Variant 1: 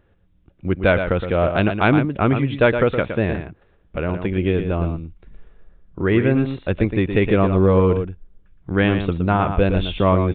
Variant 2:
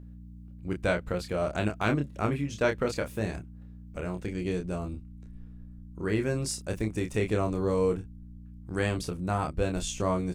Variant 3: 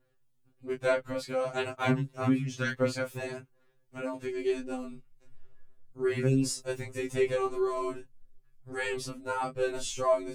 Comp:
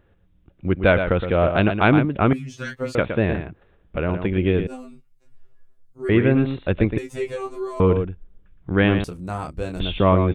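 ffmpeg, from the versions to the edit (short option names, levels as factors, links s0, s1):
-filter_complex "[2:a]asplit=3[s0][s1][s2];[0:a]asplit=5[s3][s4][s5][s6][s7];[s3]atrim=end=2.332[s8];[s0]atrim=start=2.328:end=2.952[s9];[s4]atrim=start=2.948:end=4.672[s10];[s1]atrim=start=4.668:end=6.092[s11];[s5]atrim=start=6.088:end=6.982[s12];[s2]atrim=start=6.978:end=7.802[s13];[s6]atrim=start=7.798:end=9.042[s14];[1:a]atrim=start=9.038:end=9.802[s15];[s7]atrim=start=9.798[s16];[s8][s9]acrossfade=d=0.004:c1=hsin:c2=hsin[s17];[s17][s10]acrossfade=d=0.004:c1=hsin:c2=hsin[s18];[s18][s11]acrossfade=d=0.004:c1=hsin:c2=hsin[s19];[s19][s12]acrossfade=d=0.004:c1=hsin:c2=hsin[s20];[s20][s13]acrossfade=d=0.004:c1=hsin:c2=hsin[s21];[s21][s14]acrossfade=d=0.004:c1=hsin:c2=hsin[s22];[s22][s15]acrossfade=d=0.004:c1=hsin:c2=hsin[s23];[s23][s16]acrossfade=d=0.004:c1=hsin:c2=hsin"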